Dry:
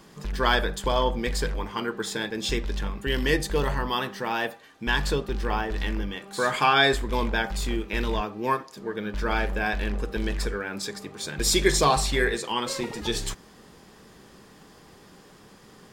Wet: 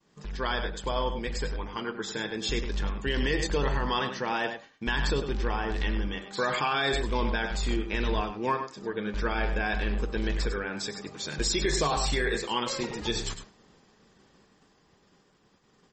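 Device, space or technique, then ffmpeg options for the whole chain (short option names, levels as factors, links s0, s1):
low-bitrate web radio: -af "agate=range=0.0224:threshold=0.00631:ratio=3:detection=peak,aecho=1:1:100:0.299,dynaudnorm=f=670:g=7:m=2.66,alimiter=limit=0.299:level=0:latency=1:release=52,volume=0.501" -ar 44100 -c:a libmp3lame -b:a 32k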